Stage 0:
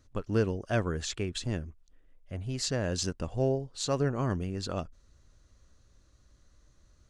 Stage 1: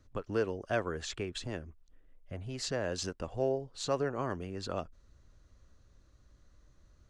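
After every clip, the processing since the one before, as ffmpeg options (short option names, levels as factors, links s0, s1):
-filter_complex "[0:a]highshelf=f=4000:g=-8,acrossover=split=340|970[s0][s1][s2];[s0]acompressor=threshold=0.01:ratio=6[s3];[s3][s1][s2]amix=inputs=3:normalize=0"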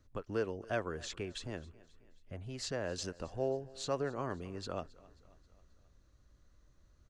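-af "aecho=1:1:268|536|804|1072:0.0794|0.0429|0.0232|0.0125,volume=0.668"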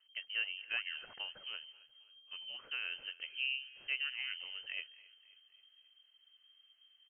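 -filter_complex "[0:a]asplit=2[s0][s1];[s1]adelay=220,highpass=300,lowpass=3400,asoftclip=type=hard:threshold=0.0299,volume=0.0708[s2];[s0][s2]amix=inputs=2:normalize=0,lowpass=f=2700:t=q:w=0.5098,lowpass=f=2700:t=q:w=0.6013,lowpass=f=2700:t=q:w=0.9,lowpass=f=2700:t=q:w=2.563,afreqshift=-3200,volume=0.708"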